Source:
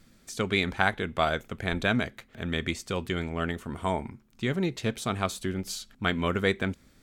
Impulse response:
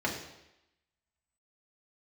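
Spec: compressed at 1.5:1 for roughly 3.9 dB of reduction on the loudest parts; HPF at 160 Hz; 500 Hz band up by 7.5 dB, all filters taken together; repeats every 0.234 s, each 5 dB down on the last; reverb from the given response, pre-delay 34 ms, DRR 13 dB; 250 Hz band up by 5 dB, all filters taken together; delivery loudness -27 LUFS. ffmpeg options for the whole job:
-filter_complex "[0:a]highpass=160,equalizer=f=250:t=o:g=5.5,equalizer=f=500:t=o:g=8,acompressor=threshold=-26dB:ratio=1.5,aecho=1:1:234|468|702|936|1170|1404|1638:0.562|0.315|0.176|0.0988|0.0553|0.031|0.0173,asplit=2[a][b];[1:a]atrim=start_sample=2205,adelay=34[c];[b][c]afir=irnorm=-1:irlink=0,volume=-21.5dB[d];[a][d]amix=inputs=2:normalize=0"

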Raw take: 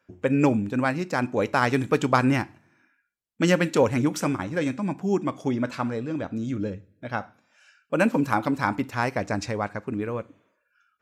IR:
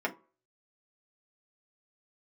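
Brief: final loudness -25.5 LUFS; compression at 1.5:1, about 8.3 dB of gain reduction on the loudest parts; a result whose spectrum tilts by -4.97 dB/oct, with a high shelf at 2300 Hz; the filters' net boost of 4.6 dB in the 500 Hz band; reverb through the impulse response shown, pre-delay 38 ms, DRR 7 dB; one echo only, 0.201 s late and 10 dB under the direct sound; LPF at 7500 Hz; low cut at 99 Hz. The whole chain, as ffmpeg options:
-filter_complex "[0:a]highpass=99,lowpass=7.5k,equalizer=f=500:t=o:g=5,highshelf=f=2.3k:g=6.5,acompressor=threshold=-35dB:ratio=1.5,aecho=1:1:201:0.316,asplit=2[a][b];[1:a]atrim=start_sample=2205,adelay=38[c];[b][c]afir=irnorm=-1:irlink=0,volume=-14.5dB[d];[a][d]amix=inputs=2:normalize=0,volume=3dB"

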